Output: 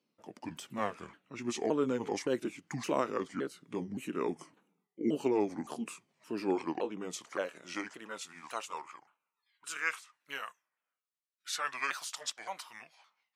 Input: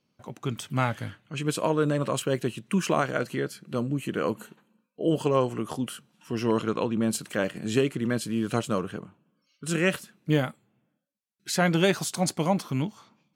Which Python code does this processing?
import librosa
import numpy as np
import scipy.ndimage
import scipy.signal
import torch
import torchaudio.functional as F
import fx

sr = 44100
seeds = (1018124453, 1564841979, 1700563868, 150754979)

y = fx.pitch_ramps(x, sr, semitones=-6.5, every_ms=567)
y = fx.filter_sweep_highpass(y, sr, from_hz=270.0, to_hz=1200.0, start_s=6.07, end_s=9.21, q=1.3)
y = y * 10.0 ** (-6.5 / 20.0)